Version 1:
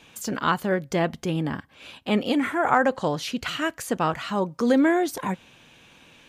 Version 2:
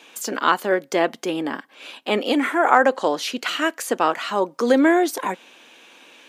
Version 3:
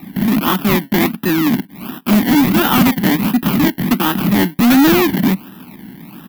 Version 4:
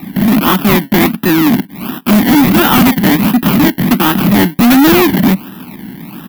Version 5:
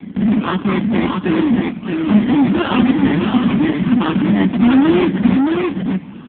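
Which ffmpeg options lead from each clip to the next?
-af "highpass=f=280:w=0.5412,highpass=f=280:w=1.3066,volume=5dB"
-filter_complex "[0:a]acrusher=samples=28:mix=1:aa=0.000001:lfo=1:lforange=16.8:lforate=1.4,firequalizer=gain_entry='entry(110,0);entry(190,14);entry(490,-23);entry(790,-15);entry(1900,-10);entry(3800,-13);entry(6600,-23);entry(13000,5)':delay=0.05:min_phase=1,asplit=2[a][b];[b]highpass=f=720:p=1,volume=28dB,asoftclip=type=tanh:threshold=-2.5dB[c];[a][c]amix=inputs=2:normalize=0,lowpass=f=7.7k:p=1,volume=-6dB"
-af "asoftclip=type=tanh:threshold=-10.5dB,volume=7dB"
-af "flanger=delay=8.1:depth=3.7:regen=-84:speed=0.61:shape=sinusoidal,aecho=1:1:623:0.668" -ar 8000 -c:a libopencore_amrnb -b:a 5150

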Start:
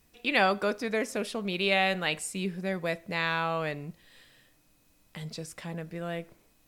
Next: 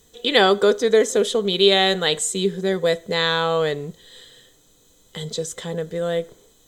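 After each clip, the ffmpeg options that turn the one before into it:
-af "superequalizer=7b=3.16:12b=0.447:13b=2.82:15b=3.16,volume=6.5dB"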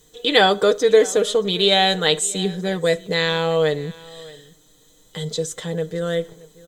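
-af "aecho=1:1:6.5:0.52,aecho=1:1:626:0.0841"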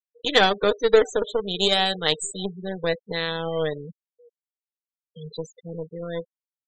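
-af "aeval=exprs='0.841*(cos(1*acos(clip(val(0)/0.841,-1,1)))-cos(1*PI/2))+0.0841*(cos(3*acos(clip(val(0)/0.841,-1,1)))-cos(3*PI/2))+0.0299*(cos(4*acos(clip(val(0)/0.841,-1,1)))-cos(4*PI/2))+0.0422*(cos(7*acos(clip(val(0)/0.841,-1,1)))-cos(7*PI/2))+0.00944*(cos(8*acos(clip(val(0)/0.841,-1,1)))-cos(8*PI/2))':c=same,afftfilt=real='re*gte(hypot(re,im),0.0447)':imag='im*gte(hypot(re,im),0.0447)':win_size=1024:overlap=0.75,volume=-1dB"

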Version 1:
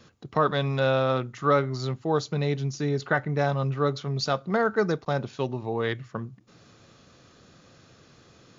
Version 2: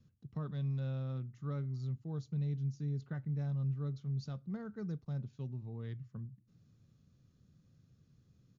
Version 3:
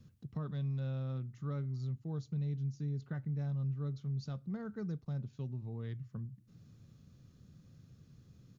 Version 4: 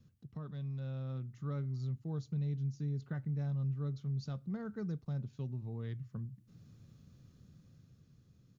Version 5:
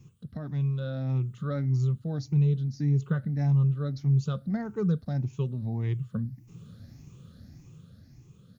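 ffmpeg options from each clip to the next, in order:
-af "firequalizer=gain_entry='entry(150,0);entry(330,-15);entry(680,-23);entry(5900,-17)':delay=0.05:min_phase=1,volume=-6.5dB"
-af "acompressor=threshold=-56dB:ratio=1.5,volume=7.5dB"
-af "dynaudnorm=f=200:g=11:m=5.5dB,volume=-5dB"
-af "afftfilt=real='re*pow(10,13/40*sin(2*PI*(0.71*log(max(b,1)*sr/1024/100)/log(2)-(1.7)*(pts-256)/sr)))':imag='im*pow(10,13/40*sin(2*PI*(0.71*log(max(b,1)*sr/1024/100)/log(2)-(1.7)*(pts-256)/sr)))':win_size=1024:overlap=0.75,volume=9dB"

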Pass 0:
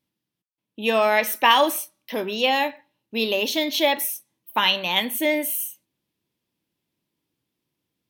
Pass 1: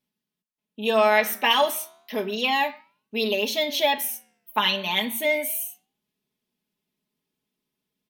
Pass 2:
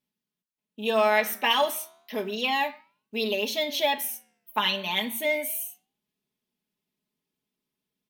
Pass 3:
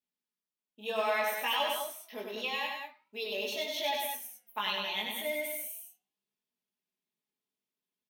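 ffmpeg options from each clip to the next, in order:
-af "aecho=1:1:4.7:0.9,bandreject=f=75.96:t=h:w=4,bandreject=f=151.92:t=h:w=4,bandreject=f=227.88:t=h:w=4,flanger=delay=6.9:depth=8.9:regen=89:speed=0.32:shape=triangular"
-af "acrusher=bits=9:mode=log:mix=0:aa=0.000001,volume=-3dB"
-filter_complex "[0:a]lowshelf=f=220:g=-12,flanger=delay=16:depth=4.7:speed=0.74,asplit=2[a][b];[b]aecho=0:1:96.21|201.2:0.631|0.501[c];[a][c]amix=inputs=2:normalize=0,volume=-5.5dB"

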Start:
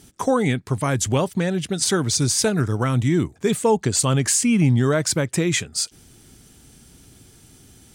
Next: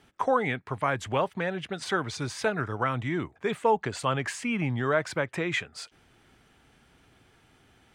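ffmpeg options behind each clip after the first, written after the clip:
-filter_complex "[0:a]acrossover=split=550 2900:gain=0.224 1 0.0708[a][b][c];[a][b][c]amix=inputs=3:normalize=0"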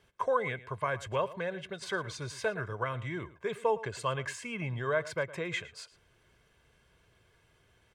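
-filter_complex "[0:a]aecho=1:1:1.9:0.62,asplit=2[a][b];[b]adelay=110.8,volume=-17dB,highshelf=f=4k:g=-2.49[c];[a][c]amix=inputs=2:normalize=0,volume=-7dB"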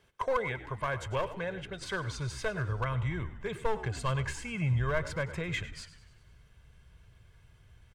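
-filter_complex "[0:a]aeval=exprs='clip(val(0),-1,0.0473)':c=same,asplit=7[a][b][c][d][e][f][g];[b]adelay=98,afreqshift=-64,volume=-16dB[h];[c]adelay=196,afreqshift=-128,volume=-20.6dB[i];[d]adelay=294,afreqshift=-192,volume=-25.2dB[j];[e]adelay=392,afreqshift=-256,volume=-29.7dB[k];[f]adelay=490,afreqshift=-320,volume=-34.3dB[l];[g]adelay=588,afreqshift=-384,volume=-38.9dB[m];[a][h][i][j][k][l][m]amix=inputs=7:normalize=0,asubboost=boost=5.5:cutoff=140"

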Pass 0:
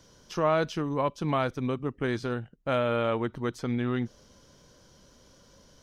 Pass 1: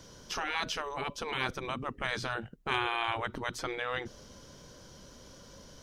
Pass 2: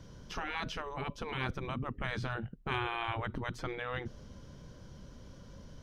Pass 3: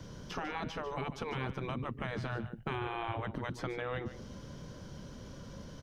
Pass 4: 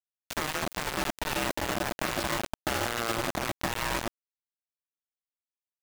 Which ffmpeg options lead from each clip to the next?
-af "afftfilt=real='re*lt(hypot(re,im),0.1)':imag='im*lt(hypot(re,im),0.1)':win_size=1024:overlap=0.75,volume=5dB"
-af "bass=f=250:g=10,treble=f=4k:g=-8,volume=-4dB"
-filter_complex "[0:a]acrossover=split=92|800|1700[a][b][c][d];[a]acompressor=threshold=-59dB:ratio=4[e];[b]acompressor=threshold=-42dB:ratio=4[f];[c]acompressor=threshold=-52dB:ratio=4[g];[d]acompressor=threshold=-53dB:ratio=4[h];[e][f][g][h]amix=inputs=4:normalize=0,aecho=1:1:147:0.237,volume=5.5dB"
-af "aeval=exprs='val(0)*sin(2*PI*460*n/s)':c=same,acrusher=bits=5:mix=0:aa=0.000001,volume=9dB"

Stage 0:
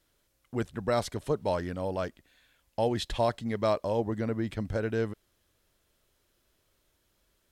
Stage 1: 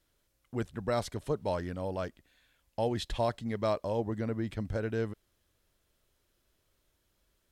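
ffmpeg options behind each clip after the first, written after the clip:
-af "lowshelf=f=130:g=3.5,volume=-3.5dB"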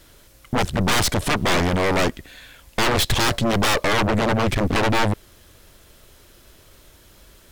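-af "aeval=exprs='0.119*sin(PI/2*7.08*val(0)/0.119)':c=same,aeval=exprs='(tanh(15.8*val(0)+0.75)-tanh(0.75))/15.8':c=same,volume=8dB"

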